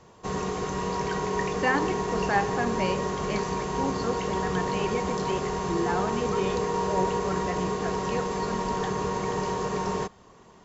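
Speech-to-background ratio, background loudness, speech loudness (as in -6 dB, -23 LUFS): -3.5 dB, -29.0 LUFS, -32.5 LUFS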